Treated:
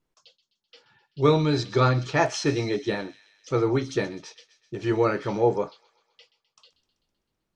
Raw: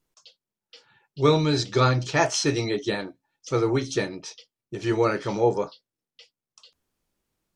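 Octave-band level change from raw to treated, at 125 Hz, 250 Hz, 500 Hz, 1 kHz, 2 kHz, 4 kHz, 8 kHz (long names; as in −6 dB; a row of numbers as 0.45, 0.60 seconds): 0.0, 0.0, 0.0, −0.5, −1.5, −4.0, −6.5 decibels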